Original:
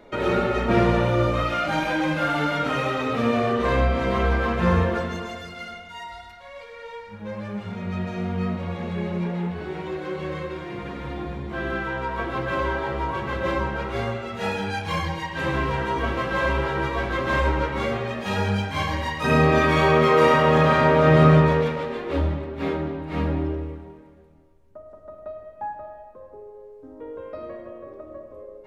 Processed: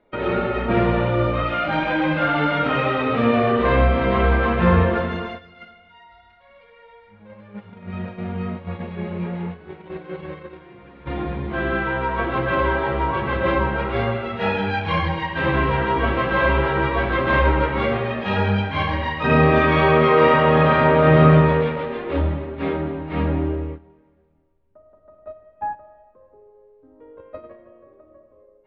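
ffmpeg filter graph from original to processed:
ffmpeg -i in.wav -filter_complex "[0:a]asettb=1/sr,asplit=3[link_01][link_02][link_03];[link_01]atrim=end=5.714[link_04];[link_02]atrim=start=5.71:end=11.06,asetpts=PTS-STARTPTS,afade=type=in:duration=0.004:curve=qsin,afade=type=out:start_time=5.346:duration=0.004:curve=qsin,acompressor=threshold=-39dB:ratio=1.5:attack=3.2:release=140:knee=1:detection=peak,aecho=1:1:786:0.282,atrim=end_sample=235935[link_05];[link_03]atrim=start=11.056[link_06];[link_04][link_05]acrossfade=duration=0.004:curve1=hsin:curve2=qsin[link_07];[link_07][link_06]acrossfade=duration=0.004:curve1=qsin:curve2=hsin,lowpass=frequency=3500:width=0.5412,lowpass=frequency=3500:width=1.3066,agate=range=-13dB:threshold=-33dB:ratio=16:detection=peak,dynaudnorm=framelen=710:gausssize=5:maxgain=5dB" out.wav

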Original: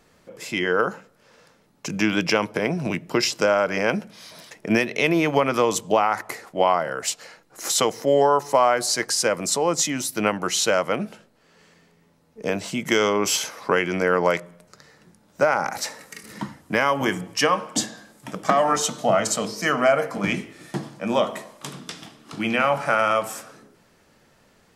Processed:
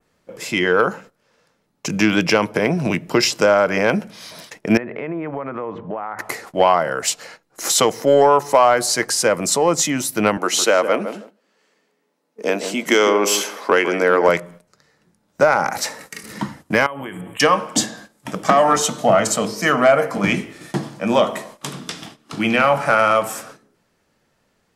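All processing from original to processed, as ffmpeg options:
ffmpeg -i in.wav -filter_complex "[0:a]asettb=1/sr,asplit=3[link_01][link_02][link_03];[link_01]atrim=end=4.774[link_04];[link_02]atrim=start=4.77:end=6.19,asetpts=PTS-STARTPTS,afade=type=in:duration=0.004:curve=qsin,afade=type=out:start_time=1.416:duration=0.004:curve=qsin,lowpass=frequency=1800:width=0.5412,lowpass=frequency=1800:width=1.3066,acompressor=threshold=-31dB:ratio=4:attack=3.2:release=140:knee=1:detection=peak[link_05];[link_03]atrim=start=6.186[link_06];[link_04][link_05]acrossfade=duration=0.004:curve1=hsin:curve2=qsin[link_07];[link_07][link_06]acrossfade=duration=0.004:curve1=qsin:curve2=hsin,asettb=1/sr,asplit=3[link_08][link_09][link_10];[link_08]atrim=end=10.374[link_11];[link_09]atrim=start=10.37:end=14.29,asetpts=PTS-STARTPTS,afade=type=in:duration=0.004:curve=qsin,afade=type=out:start_time=3.916:duration=0.004:curve=qsin,highpass=frequency=240:width=0.5412,highpass=frequency=240:width=1.3066,asplit=2[link_12][link_13];[link_13]adelay=157,lowpass=frequency=830:poles=1,volume=-7.5dB,asplit=2[link_14][link_15];[link_15]adelay=157,lowpass=frequency=830:poles=1,volume=0.22,asplit=2[link_16][link_17];[link_17]adelay=157,lowpass=frequency=830:poles=1,volume=0.22[link_18];[link_12][link_14][link_16][link_18]amix=inputs=4:normalize=0,atrim=end_sample=172872[link_19];[link_10]atrim=start=14.286[link_20];[link_11][link_19]acrossfade=duration=0.004:curve1=hsin:curve2=qsin[link_21];[link_21][link_20]acrossfade=duration=0.004:curve1=qsin:curve2=hsin,asettb=1/sr,asplit=3[link_22][link_23][link_24];[link_22]atrim=end=16.864[link_25];[link_23]atrim=start=16.86:end=17.4,asetpts=PTS-STARTPTS,afade=type=in:duration=0.004:curve=qsin,afade=type=out:start_time=0.536:duration=0.004:curve=qsin,acompressor=threshold=-33dB:ratio=6:attack=3.2:release=140:knee=1:detection=peak,asuperstop=centerf=5300:order=8:qfactor=1.2[link_26];[link_24]atrim=start=17.396[link_27];[link_25][link_26]acrossfade=duration=0.004:curve1=hsin:curve2=qsin[link_28];[link_28][link_27]acrossfade=duration=0.004:curve1=qsin:curve2=hsin,agate=range=-13dB:threshold=-45dB:ratio=16:detection=peak,adynamicequalizer=threshold=0.0141:dfrequency=4900:dqfactor=0.88:tfrequency=4900:tqfactor=0.88:attack=5:release=100:ratio=0.375:range=2.5:mode=cutabove:tftype=bell,acontrast=47" out.wav

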